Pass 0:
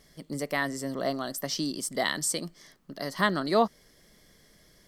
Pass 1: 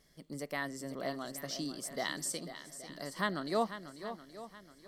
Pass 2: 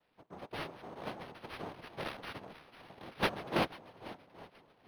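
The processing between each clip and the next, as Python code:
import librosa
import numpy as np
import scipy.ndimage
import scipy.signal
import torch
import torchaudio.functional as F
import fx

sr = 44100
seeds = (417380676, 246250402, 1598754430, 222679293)

y1 = fx.echo_swing(x, sr, ms=824, ratio=1.5, feedback_pct=32, wet_db=-11.5)
y1 = y1 * librosa.db_to_amplitude(-8.5)
y2 = fx.cheby_harmonics(y1, sr, harmonics=(3,), levels_db=(-11,), full_scale_db=-16.5)
y2 = fx.noise_vocoder(y2, sr, seeds[0], bands=2)
y2 = np.interp(np.arange(len(y2)), np.arange(len(y2))[::6], y2[::6])
y2 = y2 * librosa.db_to_amplitude(9.0)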